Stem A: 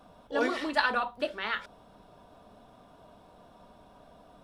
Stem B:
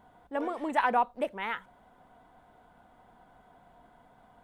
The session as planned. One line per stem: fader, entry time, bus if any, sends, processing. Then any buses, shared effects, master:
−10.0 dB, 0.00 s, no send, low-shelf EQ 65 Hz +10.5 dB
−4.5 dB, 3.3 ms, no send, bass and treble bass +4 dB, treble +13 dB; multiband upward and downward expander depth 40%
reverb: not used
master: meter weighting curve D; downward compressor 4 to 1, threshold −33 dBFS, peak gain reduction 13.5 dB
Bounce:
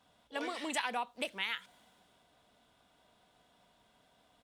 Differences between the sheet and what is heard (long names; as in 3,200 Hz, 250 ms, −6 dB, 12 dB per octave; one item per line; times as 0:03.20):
stem A −10.0 dB → −16.5 dB
stem B: polarity flipped